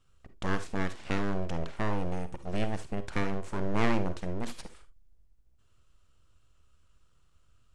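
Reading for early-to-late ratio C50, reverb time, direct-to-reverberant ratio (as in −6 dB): 13.0 dB, non-exponential decay, 11.5 dB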